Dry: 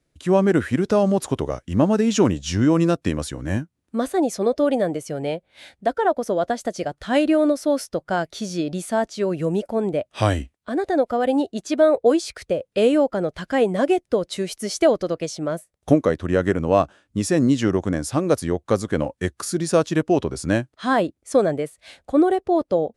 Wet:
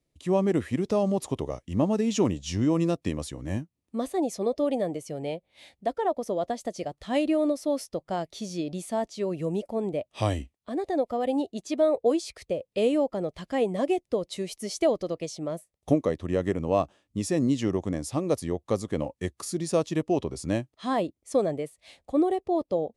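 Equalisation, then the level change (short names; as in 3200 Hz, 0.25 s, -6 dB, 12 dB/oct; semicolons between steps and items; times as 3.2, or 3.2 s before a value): bell 1500 Hz -14 dB 0.28 oct; -6.5 dB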